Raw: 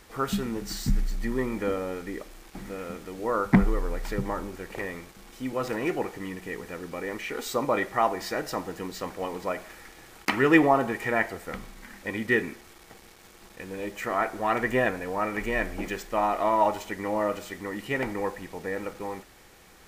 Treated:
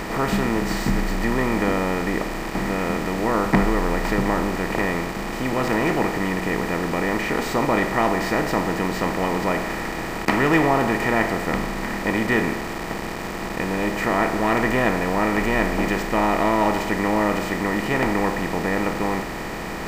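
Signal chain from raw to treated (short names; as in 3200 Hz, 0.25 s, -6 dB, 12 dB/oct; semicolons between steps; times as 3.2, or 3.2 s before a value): per-bin compression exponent 0.4; gain -2.5 dB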